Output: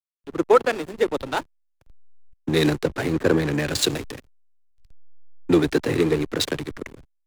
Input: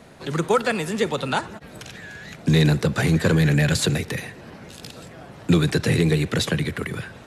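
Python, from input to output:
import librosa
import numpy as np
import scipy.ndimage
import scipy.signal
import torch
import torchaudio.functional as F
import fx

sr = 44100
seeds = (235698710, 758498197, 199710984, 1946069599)

y = fx.low_shelf_res(x, sr, hz=240.0, db=-6.0, q=3.0)
y = fx.backlash(y, sr, play_db=-20.5)
y = fx.band_widen(y, sr, depth_pct=70)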